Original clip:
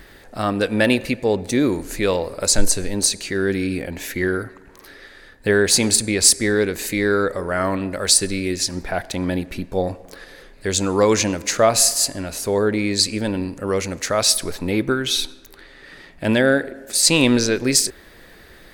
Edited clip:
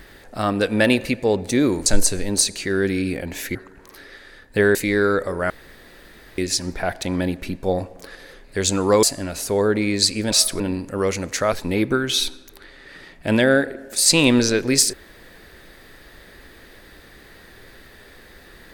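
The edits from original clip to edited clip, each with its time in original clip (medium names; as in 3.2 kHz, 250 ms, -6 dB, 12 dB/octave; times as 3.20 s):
1.86–2.51 s: delete
4.20–4.45 s: delete
5.65–6.84 s: delete
7.59–8.47 s: room tone
11.12–12.00 s: delete
14.22–14.50 s: move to 13.29 s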